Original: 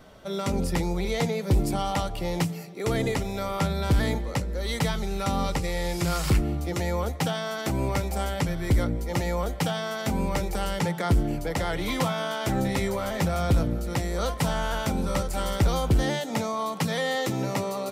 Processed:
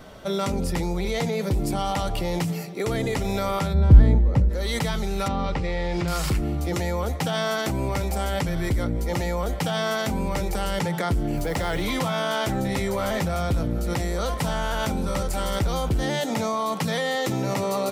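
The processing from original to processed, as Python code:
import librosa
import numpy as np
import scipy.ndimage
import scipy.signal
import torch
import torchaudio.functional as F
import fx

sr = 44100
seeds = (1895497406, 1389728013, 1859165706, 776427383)

p1 = fx.tilt_eq(x, sr, slope=-4.0, at=(3.73, 4.48), fade=0.02)
p2 = fx.lowpass(p1, sr, hz=3300.0, slope=12, at=(5.28, 6.08))
p3 = fx.over_compress(p2, sr, threshold_db=-31.0, ratio=-1.0)
p4 = p2 + (p3 * librosa.db_to_amplitude(0.0))
p5 = fx.quant_dither(p4, sr, seeds[0], bits=8, dither='triangular', at=(11.37, 11.82))
y = p5 * librosa.db_to_amplitude(-3.5)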